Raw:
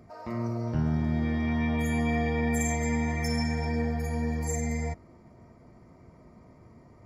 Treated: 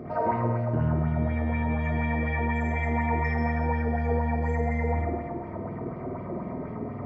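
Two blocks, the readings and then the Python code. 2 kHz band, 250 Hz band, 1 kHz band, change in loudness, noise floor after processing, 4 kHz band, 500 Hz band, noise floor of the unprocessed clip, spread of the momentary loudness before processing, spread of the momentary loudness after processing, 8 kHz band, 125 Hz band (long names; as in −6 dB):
+2.5 dB, −0.5 dB, +7.5 dB, +1.0 dB, −37 dBFS, below −10 dB, +4.5 dB, −55 dBFS, 6 LU, 9 LU, below −25 dB, +3.0 dB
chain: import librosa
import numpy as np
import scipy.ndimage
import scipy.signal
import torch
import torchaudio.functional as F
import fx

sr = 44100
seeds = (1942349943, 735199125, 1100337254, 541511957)

p1 = fx.highpass(x, sr, hz=150.0, slope=6)
p2 = fx.high_shelf(p1, sr, hz=5200.0, db=-8.0)
p3 = fx.over_compress(p2, sr, threshold_db=-43.0, ratio=-1.0)
p4 = p2 + (p3 * 10.0 ** (1.5 / 20.0))
p5 = fx.spacing_loss(p4, sr, db_at_10k=37)
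p6 = p5 + fx.echo_feedback(p5, sr, ms=179, feedback_pct=43, wet_db=-8.5, dry=0)
p7 = fx.rev_spring(p6, sr, rt60_s=1.1, pass_ms=(50,), chirp_ms=70, drr_db=-4.5)
y = fx.bell_lfo(p7, sr, hz=4.1, low_hz=320.0, high_hz=3400.0, db=8)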